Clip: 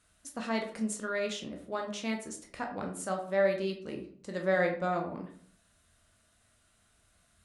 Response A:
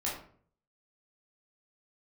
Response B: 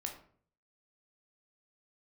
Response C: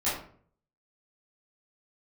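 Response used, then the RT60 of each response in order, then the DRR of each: B; 0.50 s, 0.50 s, 0.50 s; -6.5 dB, 2.0 dB, -12.5 dB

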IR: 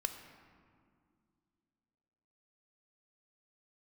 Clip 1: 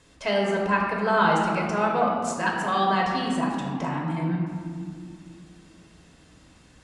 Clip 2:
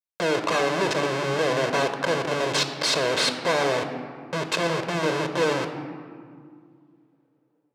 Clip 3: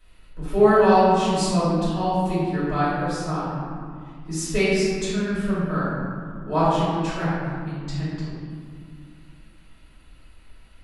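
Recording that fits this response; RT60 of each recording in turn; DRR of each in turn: 2; 2.2 s, 2.3 s, 2.2 s; -2.0 dB, 6.5 dB, -11.5 dB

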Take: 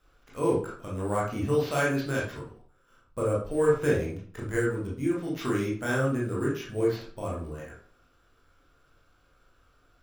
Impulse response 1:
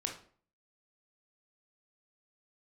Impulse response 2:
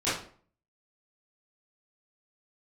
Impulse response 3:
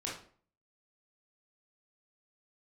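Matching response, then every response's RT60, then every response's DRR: 3; 0.50 s, 0.50 s, 0.50 s; 1.5 dB, -14.0 dB, -5.0 dB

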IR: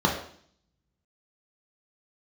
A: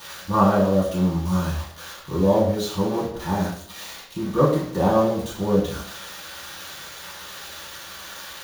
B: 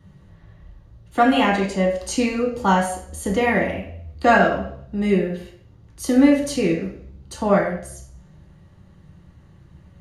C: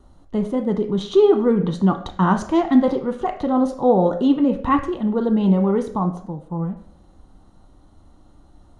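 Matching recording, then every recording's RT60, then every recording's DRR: B; 0.55 s, 0.55 s, 0.55 s; -8.0 dB, -1.5 dB, 5.0 dB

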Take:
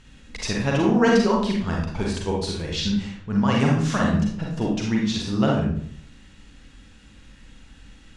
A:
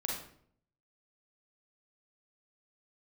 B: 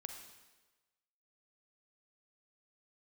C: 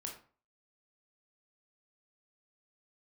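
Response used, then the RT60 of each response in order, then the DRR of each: A; 0.60 s, 1.2 s, 0.40 s; -2.0 dB, 4.5 dB, 0.5 dB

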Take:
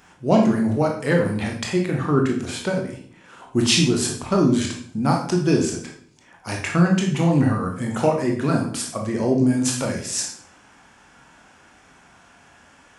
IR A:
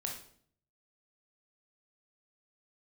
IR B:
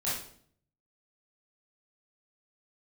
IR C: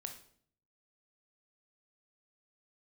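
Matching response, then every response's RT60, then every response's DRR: A; 0.55 s, 0.55 s, 0.55 s; 0.0 dB, -10.0 dB, 4.5 dB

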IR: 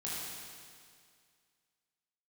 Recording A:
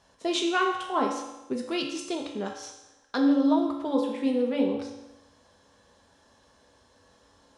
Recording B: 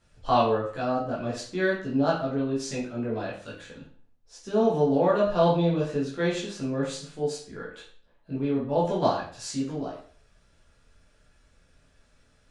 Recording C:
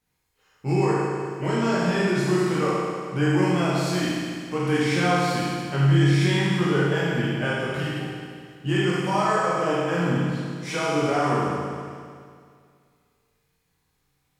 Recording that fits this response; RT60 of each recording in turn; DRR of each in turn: C; 1.0 s, 0.45 s, 2.1 s; 1.0 dB, -7.5 dB, -8.0 dB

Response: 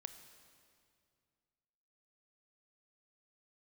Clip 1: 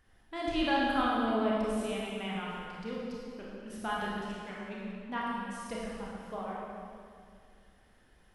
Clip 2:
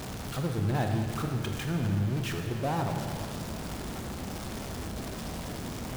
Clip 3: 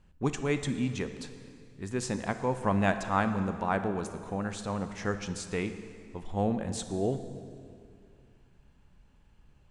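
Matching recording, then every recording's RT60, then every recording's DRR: 3; 2.3 s, 2.3 s, 2.3 s; -5.5 dB, 3.5 dB, 9.0 dB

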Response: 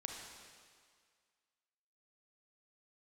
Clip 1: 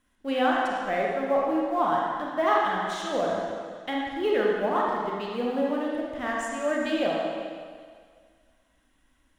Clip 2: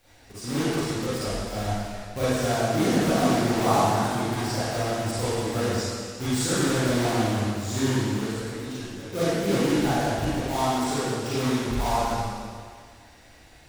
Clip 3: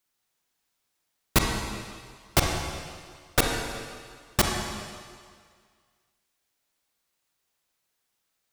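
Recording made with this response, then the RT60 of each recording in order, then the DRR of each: 3; 1.9 s, 1.9 s, 1.9 s; -3.5 dB, -12.5 dB, 0.5 dB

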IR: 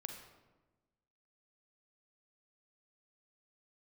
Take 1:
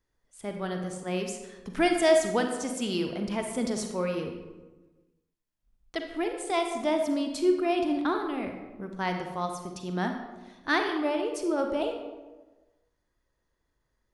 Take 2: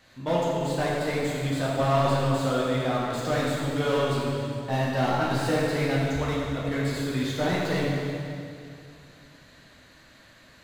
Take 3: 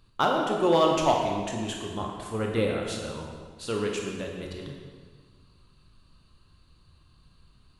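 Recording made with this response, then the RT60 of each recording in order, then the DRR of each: 1; 1.2 s, 2.5 s, 1.7 s; 4.0 dB, -6.0 dB, -0.5 dB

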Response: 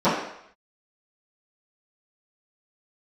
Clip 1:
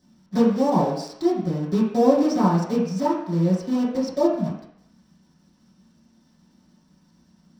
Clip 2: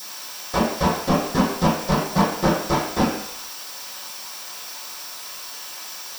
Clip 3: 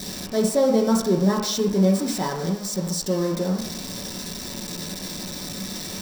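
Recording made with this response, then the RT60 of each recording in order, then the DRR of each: 2; 0.70 s, 0.70 s, 0.70 s; -9.5 dB, -17.5 dB, -3.0 dB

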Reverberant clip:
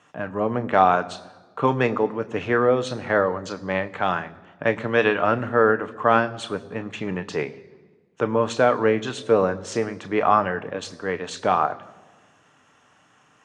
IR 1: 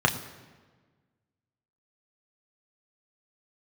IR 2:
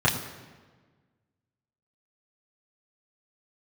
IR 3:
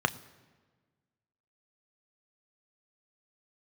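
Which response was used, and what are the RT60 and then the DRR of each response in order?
3; 1.4 s, 1.4 s, no single decay rate; 2.0 dB, -7.0 dB, 10.0 dB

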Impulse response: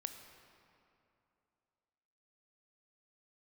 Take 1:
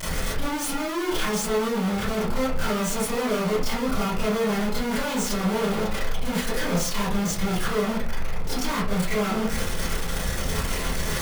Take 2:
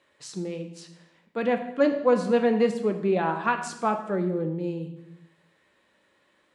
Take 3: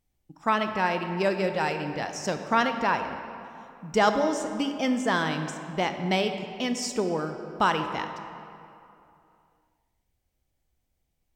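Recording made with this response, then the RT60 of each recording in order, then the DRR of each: 3; 0.45 s, 0.90 s, 2.8 s; -11.0 dB, 5.5 dB, 6.5 dB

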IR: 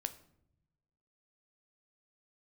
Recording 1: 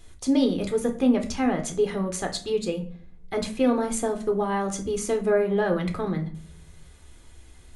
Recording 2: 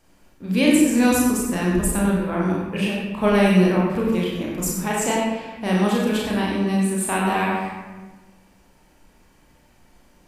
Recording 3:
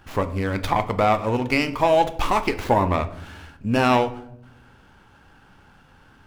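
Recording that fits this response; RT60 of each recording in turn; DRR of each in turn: 3; 0.50 s, 1.3 s, 0.75 s; 4.0 dB, -4.5 dB, 9.5 dB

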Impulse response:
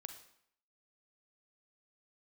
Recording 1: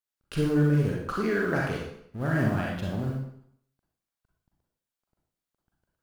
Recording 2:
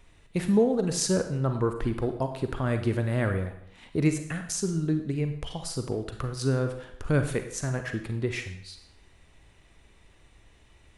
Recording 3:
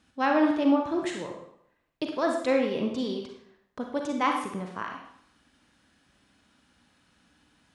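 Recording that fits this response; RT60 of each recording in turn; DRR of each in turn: 2; 0.65 s, 0.65 s, 0.65 s; -3.0 dB, 6.5 dB, 2.0 dB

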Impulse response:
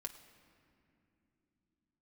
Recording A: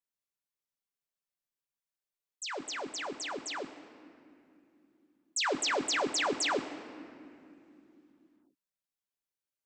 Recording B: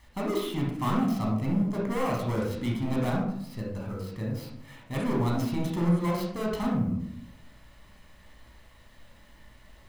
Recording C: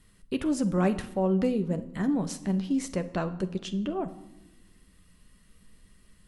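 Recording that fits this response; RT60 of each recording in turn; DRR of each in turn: A; no single decay rate, 0.75 s, 1.1 s; 3.5 dB, -2.5 dB, 8.5 dB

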